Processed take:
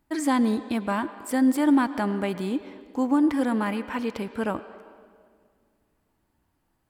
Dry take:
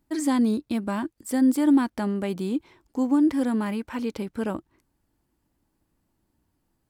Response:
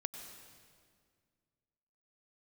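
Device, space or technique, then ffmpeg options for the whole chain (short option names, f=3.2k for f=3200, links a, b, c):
filtered reverb send: -filter_complex "[0:a]asplit=2[a][b];[b]highpass=520,lowpass=3.4k[c];[1:a]atrim=start_sample=2205[d];[c][d]afir=irnorm=-1:irlink=0,volume=0dB[e];[a][e]amix=inputs=2:normalize=0"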